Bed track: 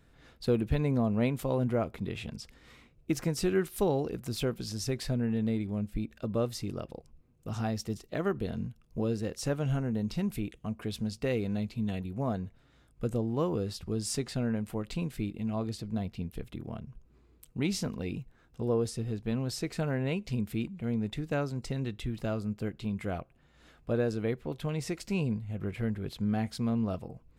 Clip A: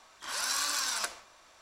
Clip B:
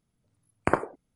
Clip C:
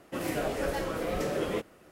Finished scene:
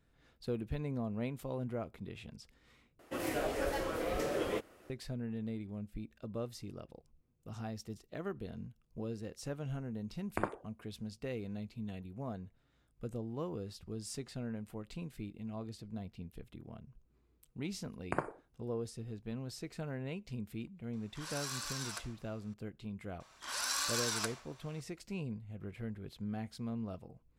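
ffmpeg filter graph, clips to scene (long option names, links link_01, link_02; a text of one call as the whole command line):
ffmpeg -i bed.wav -i cue0.wav -i cue1.wav -i cue2.wav -filter_complex "[2:a]asplit=2[link_01][link_02];[1:a]asplit=2[link_03][link_04];[0:a]volume=-10dB[link_05];[3:a]equalizer=frequency=170:width=2.4:gain=-8[link_06];[link_02]aecho=1:1:60|120|180:0.15|0.0419|0.0117[link_07];[link_05]asplit=2[link_08][link_09];[link_08]atrim=end=2.994[link_10];[link_06]atrim=end=1.91,asetpts=PTS-STARTPTS,volume=-3.5dB[link_11];[link_09]atrim=start=4.896[link_12];[link_01]atrim=end=1.15,asetpts=PTS-STARTPTS,volume=-11.5dB,afade=type=in:duration=0.004:curve=hsin,afade=type=out:start_time=1.146:duration=0.004:curve=hsin,adelay=427770S[link_13];[link_07]atrim=end=1.15,asetpts=PTS-STARTPTS,volume=-11.5dB,afade=type=in:duration=0.004:curve=hsin,afade=type=out:start_time=1.146:duration=0.004:curve=hsin,adelay=17450[link_14];[link_03]atrim=end=1.61,asetpts=PTS-STARTPTS,volume=-10.5dB,afade=type=in:duration=0.004:curve=hsin,afade=type=out:start_time=1.606:duration=0.004:curve=hsin,adelay=20930[link_15];[link_04]atrim=end=1.61,asetpts=PTS-STARTPTS,volume=-4dB,afade=type=in:duration=0.004:curve=hsin,afade=type=out:start_time=1.606:duration=0.004:curve=hsin,adelay=23200[link_16];[link_10][link_11]acrossfade=duration=0.004:curve1=hsin:curve2=hsin[link_17];[link_17][link_12]acrossfade=duration=0.004:curve1=hsin:curve2=hsin[link_18];[link_18][link_13][link_14][link_15][link_16]amix=inputs=5:normalize=0" out.wav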